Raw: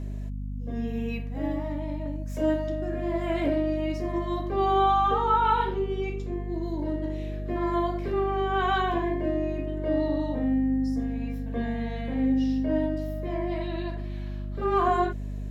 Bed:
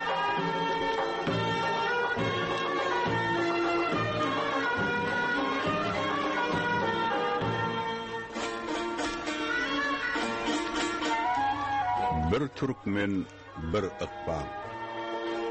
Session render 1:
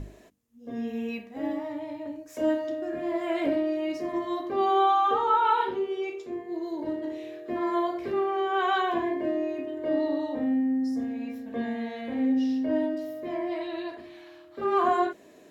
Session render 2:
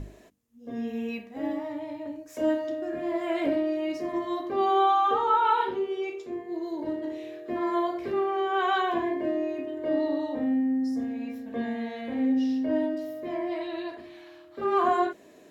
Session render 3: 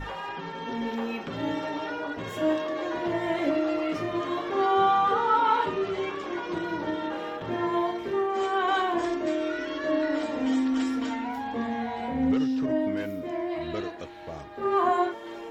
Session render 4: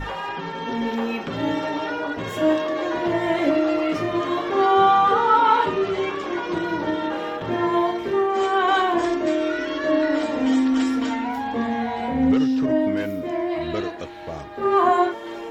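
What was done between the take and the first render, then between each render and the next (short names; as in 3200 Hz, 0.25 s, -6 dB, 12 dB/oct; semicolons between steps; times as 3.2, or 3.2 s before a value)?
notches 50/100/150/200/250/300 Hz
nothing audible
add bed -7 dB
gain +6 dB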